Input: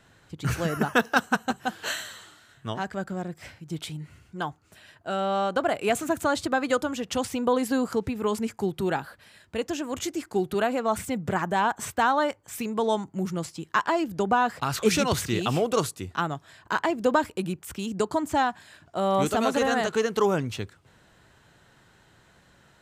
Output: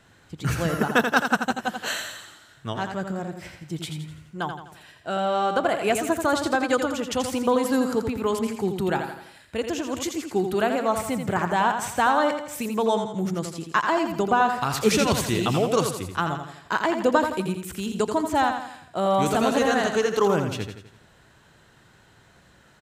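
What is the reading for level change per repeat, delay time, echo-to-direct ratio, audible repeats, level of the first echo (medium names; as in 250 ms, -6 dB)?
-6.5 dB, 84 ms, -6.0 dB, 5, -7.0 dB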